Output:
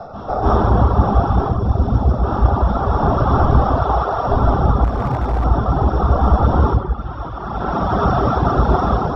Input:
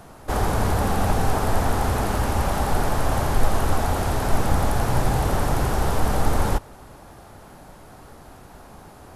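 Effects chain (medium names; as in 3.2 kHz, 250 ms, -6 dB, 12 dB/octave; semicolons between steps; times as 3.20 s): CVSD coder 32 kbps; 1.32–2.09 s: peaking EQ 1.5 kHz -13.5 dB 2.6 oct; 3.65–4.13 s: high-pass 420 Hz 24 dB/octave; band-passed feedback delay 550 ms, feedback 64%, band-pass 2 kHz, level -12 dB; reverberation RT60 1.2 s, pre-delay 133 ms, DRR -9 dB; reverb removal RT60 0.89 s; level rider; 4.84–5.44 s: hard clipper -13 dBFS, distortion -20 dB; dynamic bell 2.8 kHz, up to -3 dB, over -36 dBFS, Q 1.1; trim -1 dB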